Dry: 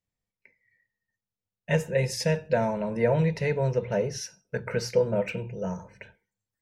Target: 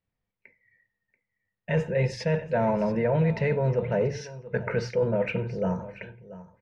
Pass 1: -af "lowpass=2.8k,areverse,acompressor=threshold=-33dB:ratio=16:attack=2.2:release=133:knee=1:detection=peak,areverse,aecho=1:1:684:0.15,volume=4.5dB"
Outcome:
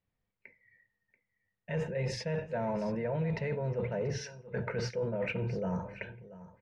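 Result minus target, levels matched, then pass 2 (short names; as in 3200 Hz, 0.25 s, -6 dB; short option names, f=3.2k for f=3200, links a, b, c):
compressor: peak gain reduction +9.5 dB
-af "lowpass=2.8k,areverse,acompressor=threshold=-23dB:ratio=16:attack=2.2:release=133:knee=1:detection=peak,areverse,aecho=1:1:684:0.15,volume=4.5dB"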